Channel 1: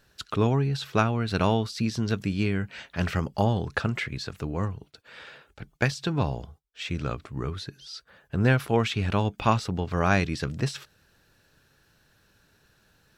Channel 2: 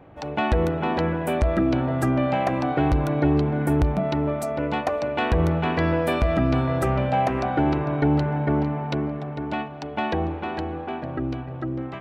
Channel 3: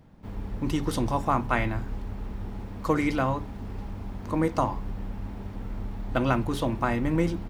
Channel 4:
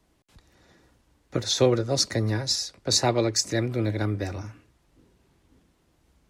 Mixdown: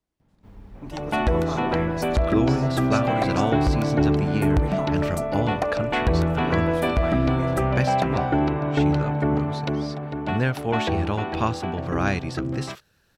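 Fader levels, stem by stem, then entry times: -2.0, 0.0, -9.5, -18.0 dB; 1.95, 0.75, 0.20, 0.00 s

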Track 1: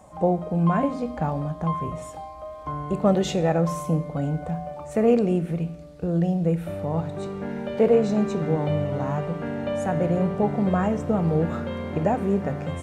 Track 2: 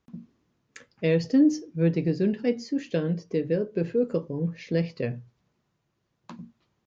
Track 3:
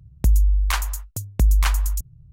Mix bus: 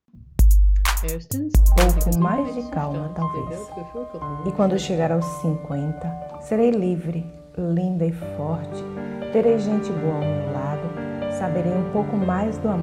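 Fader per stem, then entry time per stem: +0.5, -8.5, +2.0 dB; 1.55, 0.00, 0.15 s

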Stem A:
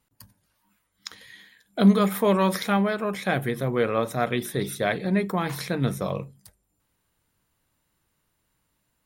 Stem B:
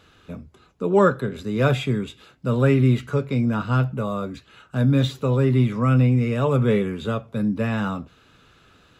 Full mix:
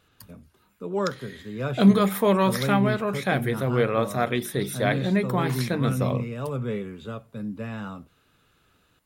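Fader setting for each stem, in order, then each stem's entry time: +0.5, -10.0 dB; 0.00, 0.00 s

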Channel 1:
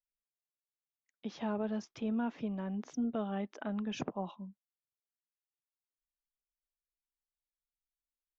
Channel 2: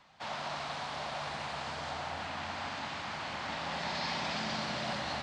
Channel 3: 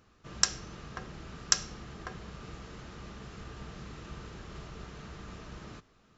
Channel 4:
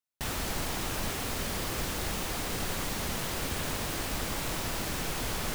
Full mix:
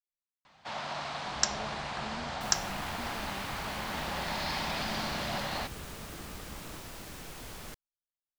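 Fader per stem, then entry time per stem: -12.0, +1.0, -2.5, -11.5 dB; 0.00, 0.45, 1.00, 2.20 s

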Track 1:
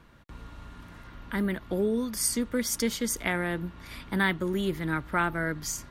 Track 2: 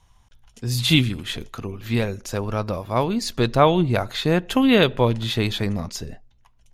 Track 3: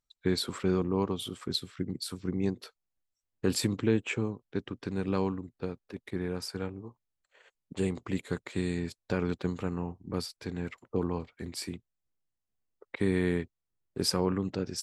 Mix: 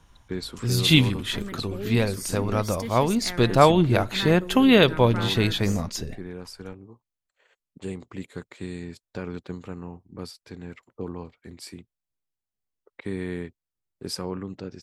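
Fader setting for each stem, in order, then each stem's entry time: -7.5, 0.0, -3.5 dB; 0.00, 0.00, 0.05 s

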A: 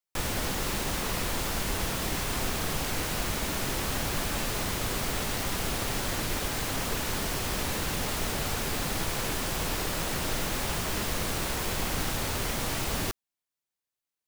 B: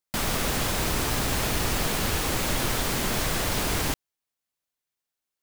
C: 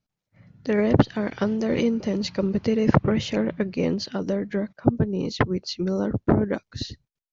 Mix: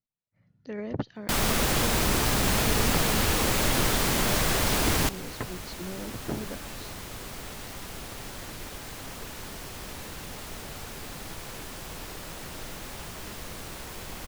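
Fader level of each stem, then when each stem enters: -9.0, +1.5, -14.0 dB; 2.30, 1.15, 0.00 s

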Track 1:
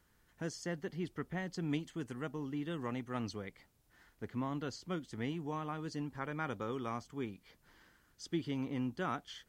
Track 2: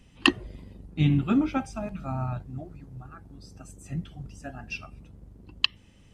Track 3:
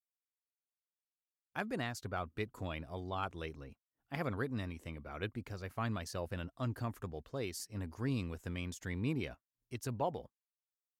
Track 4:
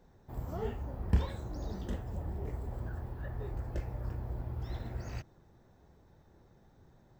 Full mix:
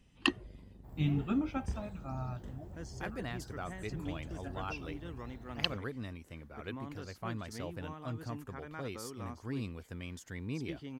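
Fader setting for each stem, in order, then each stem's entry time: -7.0, -9.0, -3.0, -11.0 dB; 2.35, 0.00, 1.45, 0.55 s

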